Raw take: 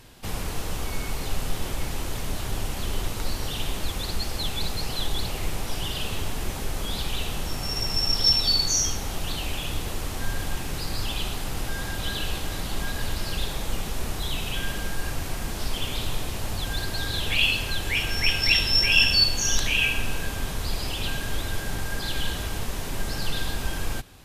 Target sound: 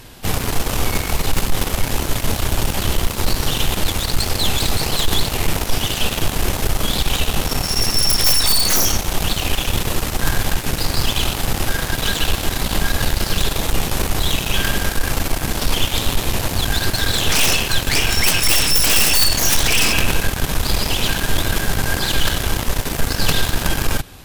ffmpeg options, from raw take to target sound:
-af "equalizer=f=13k:t=o:w=0.27:g=3.5,aeval=exprs='0.631*(cos(1*acos(clip(val(0)/0.631,-1,1)))-cos(1*PI/2))+0.178*(cos(6*acos(clip(val(0)/0.631,-1,1)))-cos(6*PI/2))+0.141*(cos(7*acos(clip(val(0)/0.631,-1,1)))-cos(7*PI/2))':c=same,aeval=exprs='0.891*sin(PI/2*7.94*val(0)/0.891)':c=same,volume=-7.5dB"

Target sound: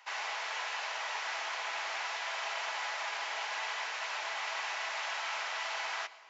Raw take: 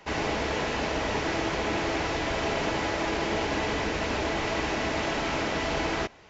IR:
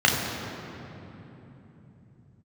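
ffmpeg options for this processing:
-filter_complex "[0:a]highpass=f=840:w=0.5412,highpass=f=840:w=1.3066,asplit=2[a][b];[1:a]atrim=start_sample=2205,asetrate=66150,aresample=44100,adelay=118[c];[b][c]afir=irnorm=-1:irlink=0,volume=-33dB[d];[a][d]amix=inputs=2:normalize=0,volume=-4.5dB"

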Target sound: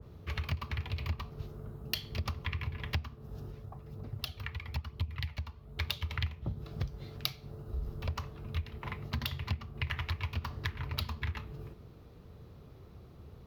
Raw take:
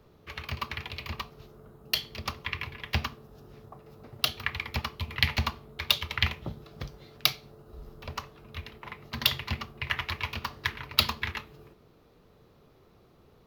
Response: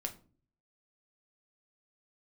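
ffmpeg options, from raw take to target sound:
-filter_complex "[0:a]equalizer=f=75:w=0.57:g=14,acompressor=threshold=-31dB:ratio=8,asplit=3[a][b][c];[a]afade=t=out:st=3.5:d=0.02[d];[b]flanger=delay=0:depth=2.3:regen=59:speed=1:shape=triangular,afade=t=in:st=3.5:d=0.02,afade=t=out:st=5.77:d=0.02[e];[c]afade=t=in:st=5.77:d=0.02[f];[d][e][f]amix=inputs=3:normalize=0,adynamicequalizer=threshold=0.00224:dfrequency=1700:dqfactor=0.7:tfrequency=1700:tqfactor=0.7:attack=5:release=100:ratio=0.375:range=2:mode=cutabove:tftype=highshelf"

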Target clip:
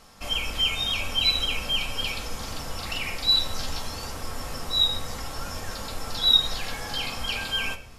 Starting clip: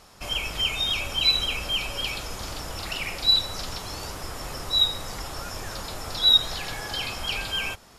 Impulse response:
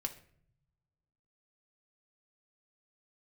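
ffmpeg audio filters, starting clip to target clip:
-filter_complex "[0:a]asettb=1/sr,asplit=3[a][b][c];[a]atrim=end=3.294[d];[b]atrim=start=3.29:end=3.9,asetpts=PTS-STARTPTS,afade=t=in:d=0.004:c=qsin,afade=t=out:st=0.606:d=0.004:c=qsin,asplit=2[e][f];[f]adelay=13,volume=-5.5dB[g];[e][g]amix=inputs=2:normalize=0,atrim=end_sample=26901[h];[c]atrim=start=3.896[i];[d][h]acrossfade=d=0.004:c1=hsin:c2=qsin[j];[j][i]acrossfade=d=0.004:c1=qsin:c2=hsin[k];[1:a]atrim=start_sample=2205[l];[k][l]afir=irnorm=-1:irlink=0"

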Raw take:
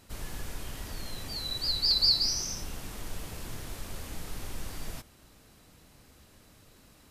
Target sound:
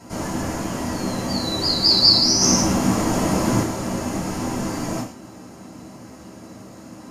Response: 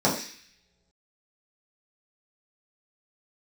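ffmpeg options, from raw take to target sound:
-filter_complex "[0:a]asettb=1/sr,asplit=3[a][b][c];[a]atrim=end=2.414[d];[b]atrim=start=2.41:end=3.63,asetpts=PTS-STARTPTS,afade=t=in:d=0.004:c=qsin,afade=t=out:st=1.216:d=0.004:c=qsin,acontrast=37[e];[c]atrim=start=3.626[f];[d][e]acrossfade=d=0.004:c1=hsin:c2=qsin[g];[g][f]acrossfade=d=0.004:c1=qsin:c2=hsin[h];[1:a]atrim=start_sample=2205,afade=t=out:st=0.22:d=0.01,atrim=end_sample=10143,asetrate=52920,aresample=44100[i];[h][i]afir=irnorm=-1:irlink=0,volume=1dB"

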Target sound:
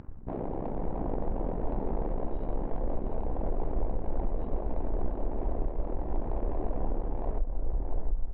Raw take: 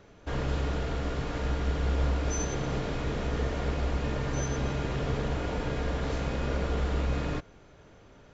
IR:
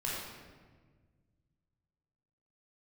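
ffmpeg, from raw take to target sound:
-filter_complex "[0:a]asplit=3[a][b][c];[b]asetrate=33038,aresample=44100,atempo=1.33484,volume=-3dB[d];[c]asetrate=37084,aresample=44100,atempo=1.18921,volume=-9dB[e];[a][d][e]amix=inputs=3:normalize=0,acrossover=split=2800[f][g];[f]aeval=exprs='0.2*sin(PI/2*7.94*val(0)/0.2)':c=same[h];[h][g]amix=inputs=2:normalize=0,afwtdn=0.126,equalizer=f=110:t=o:w=1.6:g=-6.5,areverse,acompressor=threshold=-29dB:ratio=6,areverse,asplit=2[i][j];[j]adelay=702,lowpass=f=3.8k:p=1,volume=-4dB,asplit=2[k][l];[l]adelay=702,lowpass=f=3.8k:p=1,volume=0.34,asplit=2[m][n];[n]adelay=702,lowpass=f=3.8k:p=1,volume=0.34,asplit=2[o][p];[p]adelay=702,lowpass=f=3.8k:p=1,volume=0.34[q];[i][k][m][o][q]amix=inputs=5:normalize=0,adynamicsmooth=sensitivity=4.5:basefreq=3.7k,tremolo=f=97:d=0.788,asubboost=boost=10.5:cutoff=71,asetrate=27781,aresample=44100,atempo=1.5874,alimiter=limit=-19dB:level=0:latency=1:release=418"

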